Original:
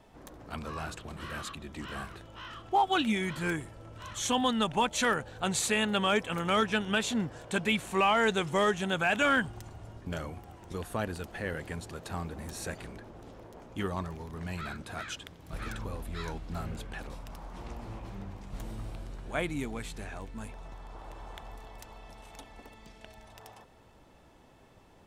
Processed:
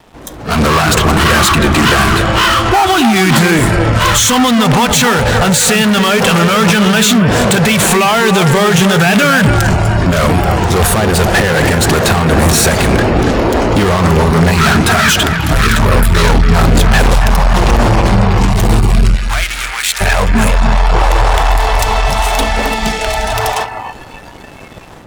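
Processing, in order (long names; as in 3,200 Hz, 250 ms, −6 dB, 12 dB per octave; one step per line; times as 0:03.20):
in parallel at −9.5 dB: fuzz pedal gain 49 dB, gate −59 dBFS
on the sum: automatic gain control gain up to 9.5 dB
brickwall limiter −11 dBFS, peak gain reduction 6.5 dB
0:19.16–0:20.01: high-pass filter 1,100 Hz 12 dB per octave
on a send: bucket-brigade delay 279 ms, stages 4,096, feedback 42%, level −7 dB
on the sum: noise reduction from a noise print of the clip's start 11 dB
level +5 dB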